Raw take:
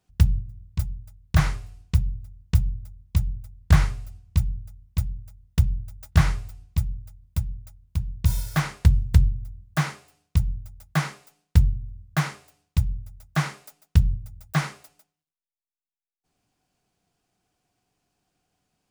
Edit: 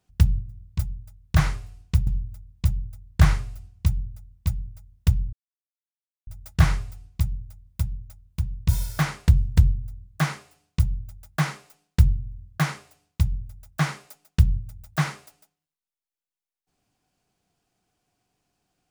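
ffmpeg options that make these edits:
ffmpeg -i in.wav -filter_complex "[0:a]asplit=3[link_01][link_02][link_03];[link_01]atrim=end=2.072[link_04];[link_02]atrim=start=2.578:end=5.84,asetpts=PTS-STARTPTS,afade=type=out:start_time=3.258:duration=0.004:curve=hsin,apad=pad_dur=0.94[link_05];[link_03]atrim=start=5.84,asetpts=PTS-STARTPTS,afade=type=in:duration=0.004:curve=hsin[link_06];[link_05][link_06]concat=n=2:v=0:a=1[link_07];[link_04][link_07]acrossfade=duration=0.004:curve1=hsin:curve2=hsin" out.wav

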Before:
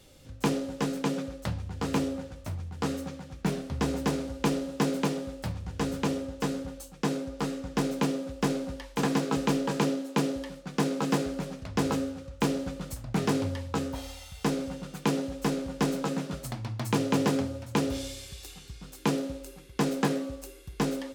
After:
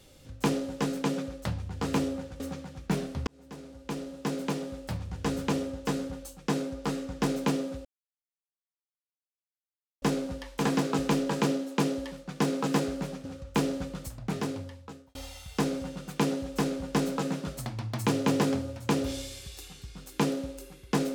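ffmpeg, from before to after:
ffmpeg -i in.wav -filter_complex "[0:a]asplit=6[link_01][link_02][link_03][link_04][link_05][link_06];[link_01]atrim=end=2.402[link_07];[link_02]atrim=start=2.948:end=3.82,asetpts=PTS-STARTPTS,afade=type=out:start_time=0.868:duration=0.004:curve=hsin[link_08];[link_03]atrim=start=3.82:end=8.4,asetpts=PTS-STARTPTS,afade=type=in:duration=1.79,afade=type=out:start_time=4.576:duration=0.004:curve=hsin,apad=pad_dur=2.17[link_09];[link_04]atrim=start=8.4:end=11.632,asetpts=PTS-STARTPTS,afade=type=in:duration=0.004:curve=hsin[link_10];[link_05]atrim=start=12.108:end=14.01,asetpts=PTS-STARTPTS,afade=type=out:start_time=0.572:duration=1.33[link_11];[link_06]atrim=start=14.01,asetpts=PTS-STARTPTS,afade=type=in:duration=0.004:curve=hsin[link_12];[link_08][link_09][link_10]concat=n=3:v=0:a=1[link_13];[link_07][link_13]acrossfade=duration=0.004:curve1=hsin:curve2=hsin[link_14];[link_11][link_12]concat=n=2:v=0:a=1[link_15];[link_14][link_15]acrossfade=duration=0.004:curve1=hsin:curve2=hsin" out.wav

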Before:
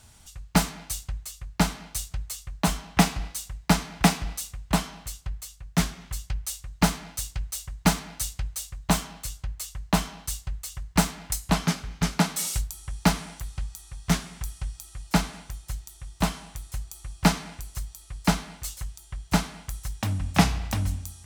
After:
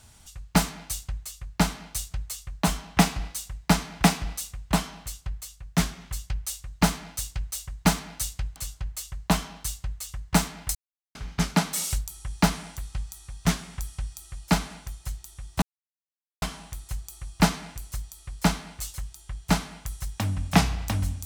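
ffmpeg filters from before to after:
ffmpeg -i in.wav -filter_complex "[0:a]asplit=5[link_01][link_02][link_03][link_04][link_05];[link_01]atrim=end=8.562[link_06];[link_02]atrim=start=9.188:end=11.38,asetpts=PTS-STARTPTS,afade=type=out:start_time=2.188:duration=0.004:curve=hsin[link_07];[link_03]atrim=start=11.38:end=11.78,asetpts=PTS-STARTPTS,volume=0[link_08];[link_04]atrim=start=11.78:end=16.25,asetpts=PTS-STARTPTS,afade=type=in:duration=0.004:curve=hsin,afade=type=out:start_time=4.466:duration=0.004:curve=hsin,apad=pad_dur=0.8[link_09];[link_05]atrim=start=16.25,asetpts=PTS-STARTPTS,afade=type=in:duration=0.004:curve=hsin[link_10];[link_07][link_08][link_09][link_10]concat=n=4:v=0:a=1[link_11];[link_06][link_11]acrossfade=duration=0.004:curve1=hsin:curve2=hsin" out.wav

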